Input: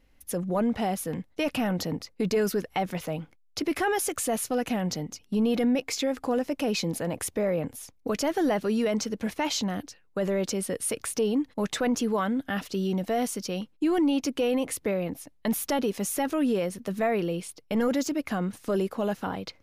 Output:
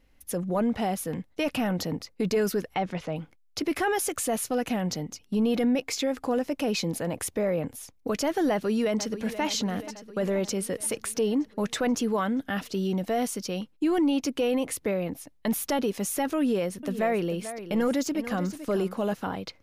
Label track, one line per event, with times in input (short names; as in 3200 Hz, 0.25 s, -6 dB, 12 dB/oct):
2.740000	3.160000	air absorption 87 m
8.510000	9.420000	echo throw 0.48 s, feedback 65%, level -12.5 dB
16.390000	19.140000	echo 0.439 s -12 dB